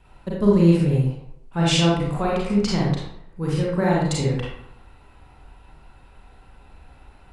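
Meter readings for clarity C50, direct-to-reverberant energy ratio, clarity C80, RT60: −0.5 dB, −5.5 dB, 3.5 dB, 0.80 s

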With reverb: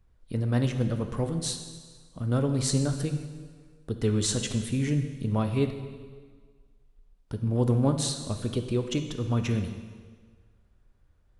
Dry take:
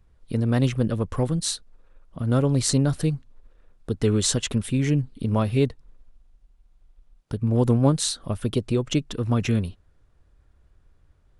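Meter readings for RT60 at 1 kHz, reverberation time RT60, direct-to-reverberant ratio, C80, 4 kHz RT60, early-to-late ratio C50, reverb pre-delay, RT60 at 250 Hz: 1.6 s, 1.6 s, 6.0 dB, 9.5 dB, 1.5 s, 8.0 dB, 5 ms, 1.5 s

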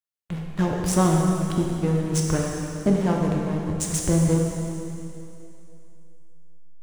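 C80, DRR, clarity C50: 2.0 dB, −1.0 dB, 1.0 dB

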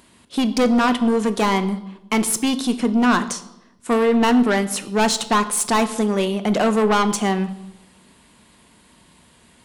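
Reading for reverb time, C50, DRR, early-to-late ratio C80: 0.90 s, 14.0 dB, 10.0 dB, 17.0 dB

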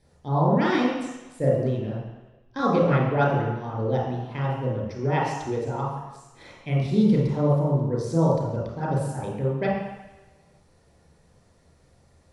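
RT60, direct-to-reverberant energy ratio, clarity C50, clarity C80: 1.1 s, −5.5 dB, 0.5 dB, 3.5 dB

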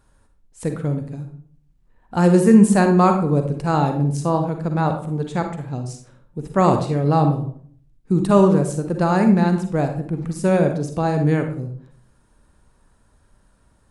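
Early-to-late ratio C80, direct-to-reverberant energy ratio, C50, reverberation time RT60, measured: 11.5 dB, 5.5 dB, 7.5 dB, 0.55 s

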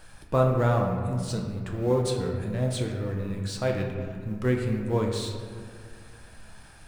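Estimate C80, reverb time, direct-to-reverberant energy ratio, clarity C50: 5.0 dB, 2.0 s, 0.5 dB, 4.0 dB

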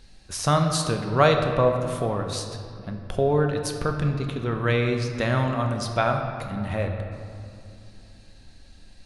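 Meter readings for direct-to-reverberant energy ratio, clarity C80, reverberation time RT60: 3.5 dB, 6.5 dB, 2.7 s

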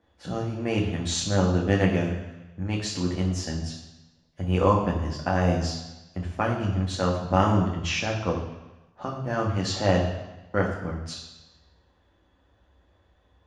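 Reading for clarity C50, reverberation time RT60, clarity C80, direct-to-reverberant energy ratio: 6.0 dB, 1.1 s, 8.0 dB, −2.0 dB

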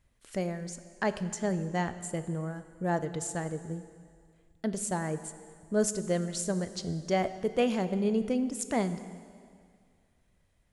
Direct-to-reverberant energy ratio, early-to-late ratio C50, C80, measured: 11.0 dB, 12.0 dB, 13.0 dB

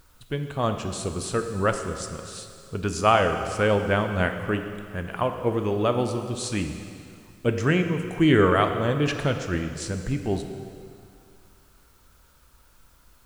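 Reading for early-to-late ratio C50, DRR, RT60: 7.5 dB, 6.0 dB, 2.4 s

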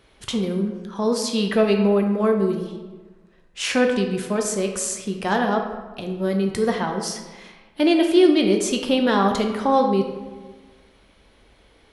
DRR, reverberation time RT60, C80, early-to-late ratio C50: 3.5 dB, 1.3 s, 8.0 dB, 6.0 dB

